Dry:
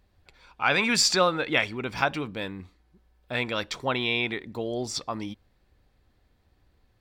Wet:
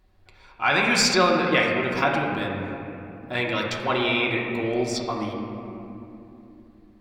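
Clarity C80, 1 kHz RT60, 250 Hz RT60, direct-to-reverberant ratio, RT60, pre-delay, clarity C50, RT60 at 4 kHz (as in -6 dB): 3.0 dB, 2.7 s, 4.6 s, -2.5 dB, 2.9 s, 3 ms, 2.0 dB, 1.7 s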